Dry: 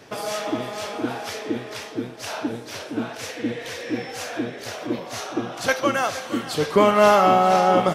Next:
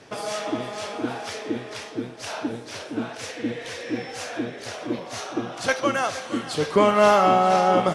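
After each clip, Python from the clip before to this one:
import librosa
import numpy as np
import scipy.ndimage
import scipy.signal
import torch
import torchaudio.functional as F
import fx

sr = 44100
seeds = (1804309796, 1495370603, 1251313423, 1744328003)

y = scipy.signal.sosfilt(scipy.signal.butter(8, 11000.0, 'lowpass', fs=sr, output='sos'), x)
y = y * 10.0 ** (-1.5 / 20.0)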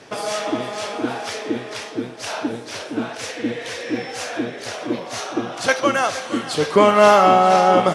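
y = fx.low_shelf(x, sr, hz=130.0, db=-6.5)
y = y * 10.0 ** (5.0 / 20.0)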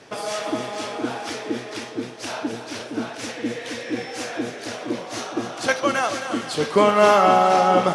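y = x + 10.0 ** (-9.5 / 20.0) * np.pad(x, (int(267 * sr / 1000.0), 0))[:len(x)]
y = y * 10.0 ** (-3.0 / 20.0)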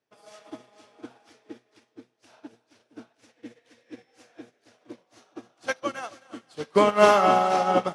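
y = fx.upward_expand(x, sr, threshold_db=-36.0, expansion=2.5)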